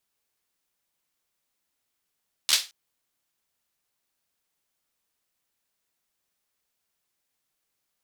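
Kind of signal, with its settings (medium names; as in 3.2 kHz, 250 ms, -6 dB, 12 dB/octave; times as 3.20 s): hand clap length 0.22 s, apart 13 ms, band 4 kHz, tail 0.27 s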